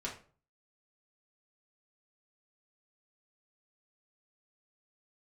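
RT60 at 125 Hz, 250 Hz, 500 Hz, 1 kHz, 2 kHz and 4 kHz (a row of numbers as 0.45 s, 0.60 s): 0.55 s, 0.45 s, 0.45 s, 0.40 s, 0.35 s, 0.30 s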